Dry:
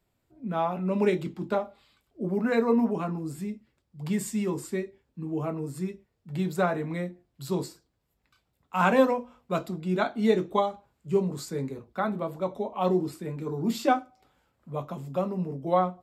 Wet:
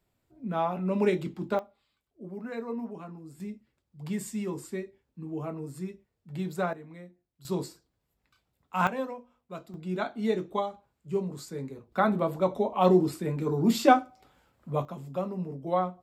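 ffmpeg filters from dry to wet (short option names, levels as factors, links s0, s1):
-af "asetnsamples=n=441:p=0,asendcmd='1.59 volume volume -12dB;3.4 volume volume -4.5dB;6.73 volume volume -14.5dB;7.45 volume volume -2dB;8.87 volume volume -12.5dB;9.74 volume volume -5dB;11.92 volume volume 4dB;14.85 volume volume -3.5dB',volume=0.891"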